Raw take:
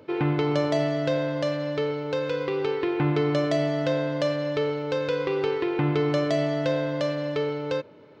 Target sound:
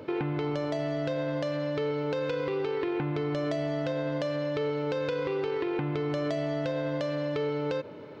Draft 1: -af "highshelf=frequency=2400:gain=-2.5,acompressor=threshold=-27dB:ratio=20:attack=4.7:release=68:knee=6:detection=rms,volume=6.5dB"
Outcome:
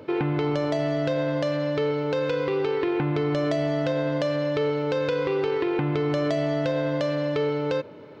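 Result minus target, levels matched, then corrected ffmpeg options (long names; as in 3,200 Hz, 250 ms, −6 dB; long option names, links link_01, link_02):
downward compressor: peak gain reduction −5.5 dB
-af "highshelf=frequency=2400:gain=-2.5,acompressor=threshold=-33dB:ratio=20:attack=4.7:release=68:knee=6:detection=rms,volume=6.5dB"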